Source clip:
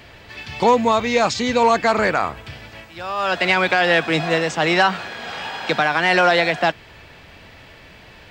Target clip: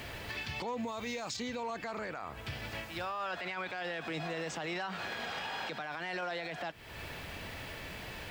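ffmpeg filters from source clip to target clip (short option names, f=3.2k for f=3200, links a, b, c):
-filter_complex "[0:a]asettb=1/sr,asplit=3[a][b][c];[a]atrim=end=3.054[d];[b]atrim=start=3.05:end=3.7,asetpts=PTS-STARTPTS,afade=t=in:d=0.004:c=qsin,afade=t=out:st=0.646:d=0.004:c=qsin,equalizer=f=1.3k:t=o:w=1.8:g=4.5[e];[c]atrim=start=3.696[f];[d][e]acrossfade=d=0.004:c1=hsin:c2=qsin[g];[g][f]acrossfade=d=0.004:c1=qsin:c2=hsin,acrusher=bits=8:mix=0:aa=0.000001,asettb=1/sr,asplit=3[h][i][j];[h]atrim=end=0.874[k];[i]atrim=start=0.87:end=1.37,asetpts=PTS-STARTPTS,afade=t=in:d=0.004:c=qsin,afade=t=out:st=0.496:d=0.004:c=qsin,highshelf=f=6.2k:g=11[l];[j]atrim=start=1.366[m];[k][l]acrossfade=d=0.004:c1=hsin:c2=qsin[n];[n][m]acrossfade=d=0.004:c1=qsin:c2=hsin,alimiter=level_in=5.5dB:limit=-24dB:level=0:latency=1:release=345,volume=-5.5dB"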